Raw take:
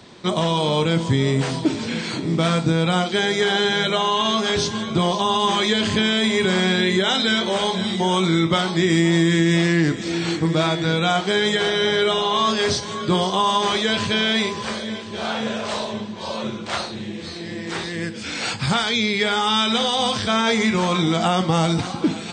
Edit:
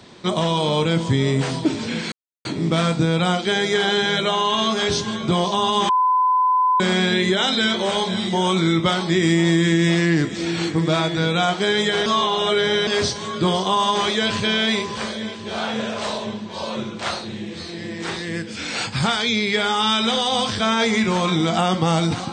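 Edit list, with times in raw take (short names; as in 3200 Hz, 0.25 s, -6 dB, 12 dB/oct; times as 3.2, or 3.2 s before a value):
2.12 insert silence 0.33 s
5.56–6.47 bleep 1010 Hz -14 dBFS
11.73–12.54 reverse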